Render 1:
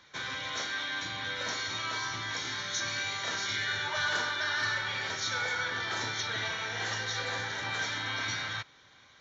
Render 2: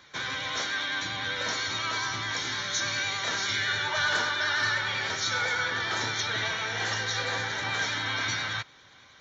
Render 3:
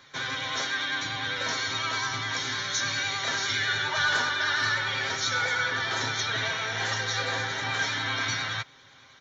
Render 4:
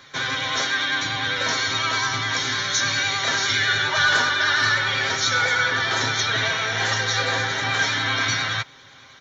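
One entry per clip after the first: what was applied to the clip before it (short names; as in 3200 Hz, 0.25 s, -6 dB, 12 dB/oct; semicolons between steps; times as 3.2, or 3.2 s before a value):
vibrato 9.9 Hz 31 cents; gain +4 dB
comb 7.5 ms, depth 43%
notch 900 Hz, Q 28; gain +6.5 dB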